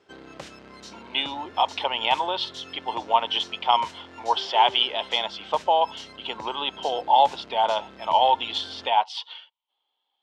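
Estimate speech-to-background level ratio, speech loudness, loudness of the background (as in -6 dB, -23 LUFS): 19.5 dB, -24.0 LUFS, -43.5 LUFS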